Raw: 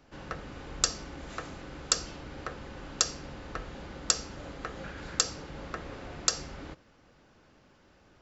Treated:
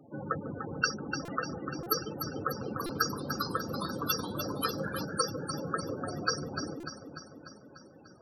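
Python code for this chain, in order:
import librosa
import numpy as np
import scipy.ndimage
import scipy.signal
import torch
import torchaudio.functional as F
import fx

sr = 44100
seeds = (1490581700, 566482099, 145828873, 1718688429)

y = fx.tracing_dist(x, sr, depth_ms=0.34)
y = fx.dereverb_blind(y, sr, rt60_s=0.68)
y = scipy.signal.sosfilt(scipy.signal.butter(4, 100.0, 'highpass', fs=sr, output='sos'), y)
y = fx.notch(y, sr, hz=2100.0, q=26.0)
y = fx.spec_topn(y, sr, count=16)
y = fx.echo_alternate(y, sr, ms=148, hz=850.0, feedback_pct=78, wet_db=-6)
y = fx.echo_pitch(y, sr, ms=315, semitones=-2, count=3, db_per_echo=-6.0, at=(2.32, 5.05))
y = fx.buffer_glitch(y, sr, at_s=(1.25, 1.83, 2.86, 6.8), block=128, repeats=10)
y = F.gain(torch.from_numpy(y), 9.0).numpy()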